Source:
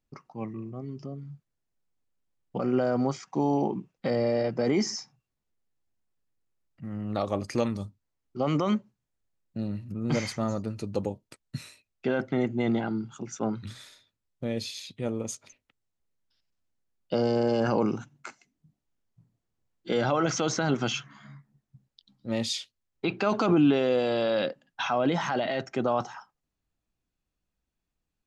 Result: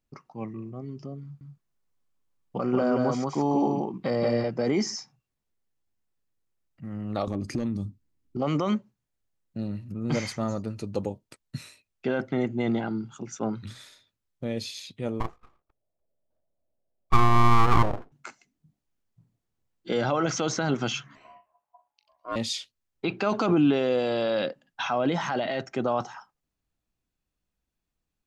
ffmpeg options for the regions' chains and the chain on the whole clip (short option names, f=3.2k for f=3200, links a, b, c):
-filter_complex "[0:a]asettb=1/sr,asplit=3[a][b][c];[a]atrim=end=1.234[d];[b]atrim=start=1.23:end=4.44,asetpts=PTS-STARTPTS,afade=t=in:d=0.004:c=qsin,afade=t=out:st=3.206:d=0.004:c=qsin,equalizer=f=1.1k:t=o:w=0.33:g=6,aecho=1:1:179:0.708,atrim=end_sample=141561[e];[c]atrim=start=4.436[f];[d][e]acrossfade=d=0.004:c1=hsin:c2=qsin[g];[g][f]acrossfade=d=0.004:c1=qsin:c2=hsin,asettb=1/sr,asplit=3[h][i][j];[h]atrim=end=7.274[k];[i]atrim=start=7.27:end=8.42,asetpts=PTS-STARTPTS,afade=t=in:d=0.004:c=qsin,afade=t=out:st=1.146:d=0.004:c=qsin,volume=18.5dB,asoftclip=hard,volume=-18.5dB,lowshelf=f=420:t=q:w=1.5:g=9.5,acompressor=threshold=-28dB:ratio=3:attack=3.2:release=140:knee=1:detection=peak[l];[j]atrim=start=8.416[m];[k][l]acrossfade=d=0.004:c1=hsin:c2=qsin[n];[n][m]acrossfade=d=0.004:c1=qsin:c2=hsin,asettb=1/sr,asplit=3[o][p][q];[o]atrim=end=15.204[r];[p]atrim=start=15.2:end=18.12,asetpts=PTS-STARTPTS,afade=t=in:d=0.004:c=qsin,afade=t=out:st=2.916:d=0.004:c=qsin,lowpass=f=620:t=q:w=7,aeval=exprs='abs(val(0))':c=same[s];[q]atrim=start=18.116[t];[r][s]acrossfade=d=0.004:c1=hsin:c2=qsin[u];[u][t]acrossfade=d=0.004:c1=qsin:c2=hsin,asettb=1/sr,asplit=3[v][w][x];[v]atrim=end=21.154[y];[w]atrim=start=21.15:end=22.36,asetpts=PTS-STARTPTS,afade=t=in:d=0.004:c=qsin,afade=t=out:st=1.206:d=0.004:c=qsin,equalizer=f=4.6k:t=o:w=0.86:g=-10.5,aeval=exprs='val(0)*sin(2*PI*850*n/s)':c=same,asplit=2[z][aa];[aa]adelay=40,volume=-12dB[ab];[z][ab]amix=inputs=2:normalize=0,atrim=end_sample=53361[ac];[x]atrim=start=22.356[ad];[y][ac]acrossfade=d=0.004:c1=hsin:c2=qsin[ae];[ae][ad]acrossfade=d=0.004:c1=qsin:c2=hsin"